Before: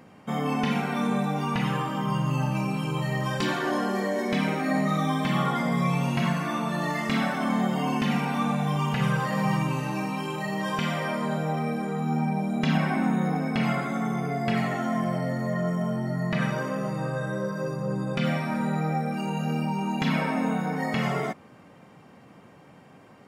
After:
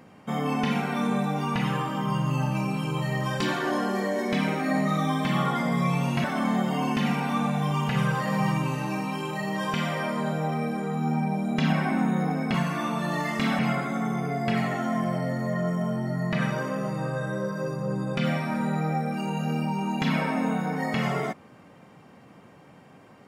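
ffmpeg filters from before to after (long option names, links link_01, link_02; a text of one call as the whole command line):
ffmpeg -i in.wav -filter_complex "[0:a]asplit=4[link_01][link_02][link_03][link_04];[link_01]atrim=end=6.242[link_05];[link_02]atrim=start=7.288:end=13.592[link_06];[link_03]atrim=start=6.238:end=7.292[link_07];[link_04]atrim=start=13.588[link_08];[link_05][link_06]acrossfade=duration=0.004:curve1=hsin:curve2=hsin[link_09];[link_09][link_07]acrossfade=duration=0.004:curve1=hsin:curve2=hsin[link_10];[link_10][link_08]acrossfade=duration=0.004:curve1=hsin:curve2=hsin" out.wav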